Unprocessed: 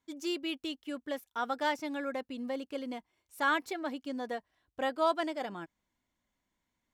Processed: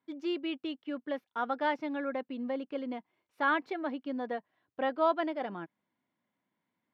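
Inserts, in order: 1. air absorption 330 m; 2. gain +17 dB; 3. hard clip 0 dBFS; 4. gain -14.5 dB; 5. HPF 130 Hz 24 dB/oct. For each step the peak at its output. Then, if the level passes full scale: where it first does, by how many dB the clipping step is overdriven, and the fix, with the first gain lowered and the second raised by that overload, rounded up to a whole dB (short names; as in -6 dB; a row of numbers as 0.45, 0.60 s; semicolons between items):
-19.0, -2.0, -2.0, -16.5, -16.0 dBFS; no overload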